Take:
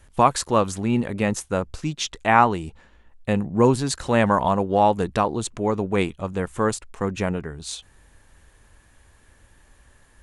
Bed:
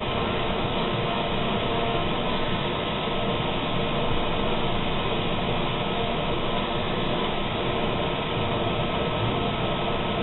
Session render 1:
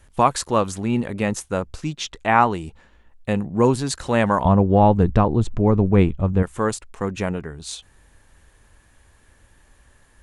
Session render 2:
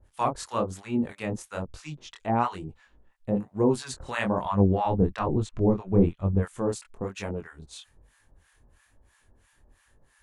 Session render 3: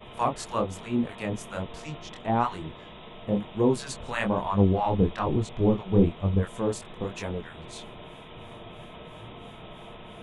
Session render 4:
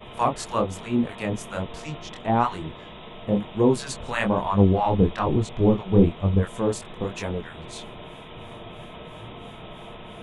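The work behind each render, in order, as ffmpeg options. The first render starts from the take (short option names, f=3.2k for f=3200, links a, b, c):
-filter_complex "[0:a]asettb=1/sr,asplit=3[a][b][c];[a]atrim=end=1.954[d];[b]atrim=start=1.95:end=2.41,asetpts=PTS-STARTPTS,afade=t=in:d=0.004:c=qsin,afade=t=out:st=0.456:d=0.004:c=qsin,highshelf=f=6.4k:g=-6.5[e];[c]atrim=start=2.406[f];[d][e]acrossfade=d=0.004:c1=hsin:c2=qsin[g];[g][f]acrossfade=d=0.004:c1=qsin:c2=hsin,asettb=1/sr,asplit=3[h][i][j];[h]atrim=end=4.454[k];[i]atrim=start=4.45:end=6.43,asetpts=PTS-STARTPTS,afade=t=in:d=0.004:c=qsin,afade=t=out:st=1.976:d=0.004:c=qsin,aemphasis=mode=reproduction:type=riaa[l];[j]atrim=start=6.426[m];[k][l]acrossfade=d=0.004:c1=hsin:c2=qsin[n];[n][m]acrossfade=d=0.004:c1=qsin:c2=hsin"
-filter_complex "[0:a]flanger=delay=19.5:depth=7.1:speed=1.1,acrossover=split=860[a][b];[a]aeval=exprs='val(0)*(1-1/2+1/2*cos(2*PI*3*n/s))':c=same[c];[b]aeval=exprs='val(0)*(1-1/2-1/2*cos(2*PI*3*n/s))':c=same[d];[c][d]amix=inputs=2:normalize=0"
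-filter_complex "[1:a]volume=-18.5dB[a];[0:a][a]amix=inputs=2:normalize=0"
-af "volume=3.5dB"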